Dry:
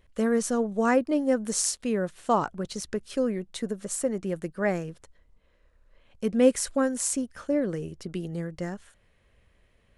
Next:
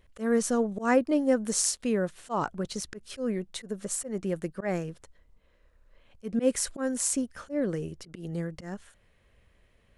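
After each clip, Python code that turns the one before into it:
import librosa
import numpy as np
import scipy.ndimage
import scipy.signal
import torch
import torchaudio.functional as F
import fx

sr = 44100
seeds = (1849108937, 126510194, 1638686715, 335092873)

y = fx.auto_swell(x, sr, attack_ms=131.0)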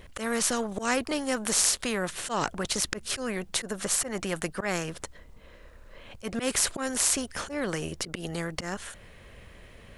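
y = fx.spectral_comp(x, sr, ratio=2.0)
y = y * librosa.db_to_amplitude(4.5)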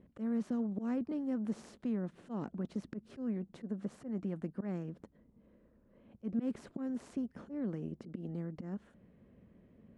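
y = fx.bandpass_q(x, sr, hz=220.0, q=2.3)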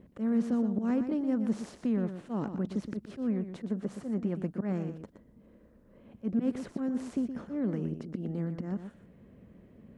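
y = x + 10.0 ** (-9.5 / 20.0) * np.pad(x, (int(120 * sr / 1000.0), 0))[:len(x)]
y = y * librosa.db_to_amplitude(6.0)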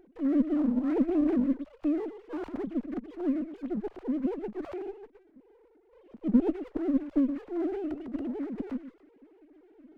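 y = fx.sine_speech(x, sr)
y = fx.running_max(y, sr, window=17)
y = y * librosa.db_to_amplitude(2.5)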